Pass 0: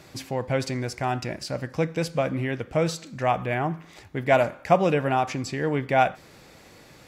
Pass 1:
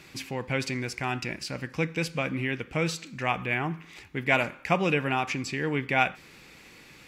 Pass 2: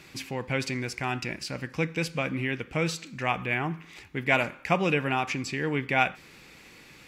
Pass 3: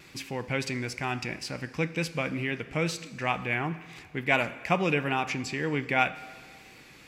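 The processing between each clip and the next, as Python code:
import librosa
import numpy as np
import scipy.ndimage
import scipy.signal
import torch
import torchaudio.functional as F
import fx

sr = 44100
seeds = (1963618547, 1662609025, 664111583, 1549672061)

y1 = fx.graphic_eq_15(x, sr, hz=(100, 630, 2500), db=(-6, -9, 8))
y1 = y1 * librosa.db_to_amplitude(-1.5)
y2 = y1
y3 = fx.wow_flutter(y2, sr, seeds[0], rate_hz=2.1, depth_cents=29.0)
y3 = fx.rev_plate(y3, sr, seeds[1], rt60_s=2.1, hf_ratio=0.95, predelay_ms=0, drr_db=15.5)
y3 = y3 * librosa.db_to_amplitude(-1.0)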